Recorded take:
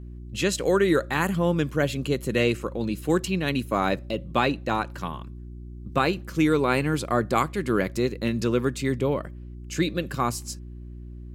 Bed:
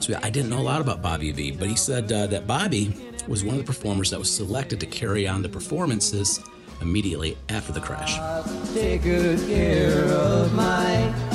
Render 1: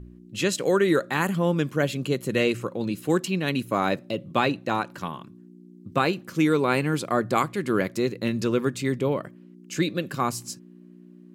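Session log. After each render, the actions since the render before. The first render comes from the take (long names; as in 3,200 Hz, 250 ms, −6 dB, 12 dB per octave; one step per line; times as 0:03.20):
hum removal 60 Hz, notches 2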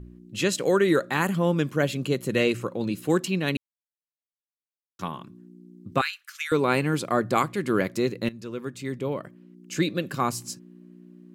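0:03.57–0:04.99: silence
0:06.01–0:06.52: Butterworth high-pass 1,400 Hz
0:08.29–0:09.79: fade in, from −16.5 dB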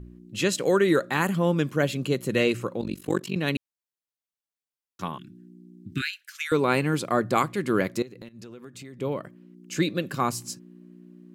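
0:02.81–0:03.36: amplitude modulation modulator 47 Hz, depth 95%
0:05.18–0:06.32: Chebyshev band-stop filter 350–1,500 Hz, order 4
0:08.02–0:08.99: downward compressor 12 to 1, threshold −38 dBFS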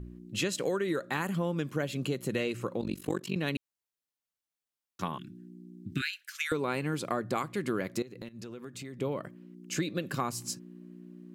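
downward compressor 6 to 1, threshold −28 dBFS, peak gain reduction 11 dB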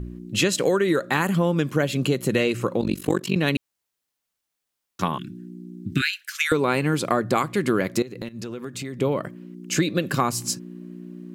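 level +10 dB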